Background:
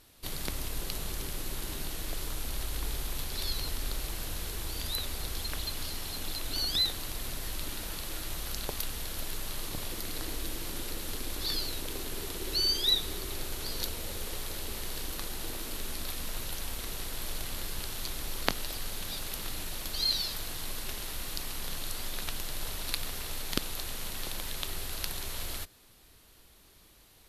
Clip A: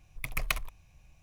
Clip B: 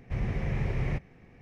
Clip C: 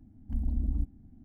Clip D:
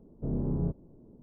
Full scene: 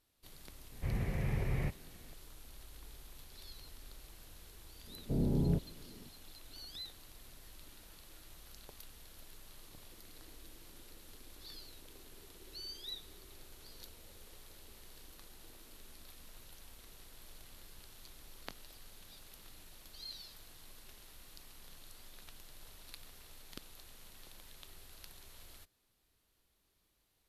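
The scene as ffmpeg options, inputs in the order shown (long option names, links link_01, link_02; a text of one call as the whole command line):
ffmpeg -i bed.wav -i cue0.wav -i cue1.wav -i cue2.wav -i cue3.wav -filter_complex "[0:a]volume=-18.5dB[link_01];[4:a]asuperstop=centerf=1100:order=4:qfactor=6.7[link_02];[2:a]atrim=end=1.41,asetpts=PTS-STARTPTS,volume=-5dB,afade=type=in:duration=0.004:curve=hsin,afade=type=out:start_time=1.406:duration=0.004:curve=hsin,adelay=720[link_03];[link_02]atrim=end=1.22,asetpts=PTS-STARTPTS,volume=-1dB,afade=type=in:duration=0.004:curve=hsin,afade=type=out:start_time=1.216:duration=0.004:curve=hsin,adelay=4870[link_04];[link_01][link_03][link_04]amix=inputs=3:normalize=0" out.wav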